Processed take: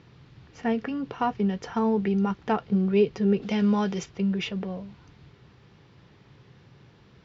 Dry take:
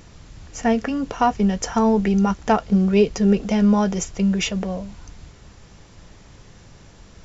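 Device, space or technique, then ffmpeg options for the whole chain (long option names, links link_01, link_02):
guitar cabinet: -filter_complex "[0:a]highpass=100,equalizer=frequency=130:width_type=q:width=4:gain=9,equalizer=frequency=390:width_type=q:width=4:gain=4,equalizer=frequency=630:width_type=q:width=4:gain=-5,lowpass=frequency=4300:width=0.5412,lowpass=frequency=4300:width=1.3066,asettb=1/sr,asplit=3[link_01][link_02][link_03];[link_01]atrim=end=3.424[link_04];[link_02]atrim=start=3.42:end=4.06,asetpts=PTS-STARTPTS,afade=type=in:duration=0.004:curve=qsin,afade=type=out:start_time=0.636:duration=0.004:curve=qsin,highshelf=frequency=2000:gain=9[link_05];[link_03]atrim=start=4.056[link_06];[link_04][link_05]acrossfade=duration=0.004:curve1=hsin:curve2=qsin[link_07];[link_07][link_06]acrossfade=duration=0.004:curve1=qsin:curve2=hsin,volume=-7dB"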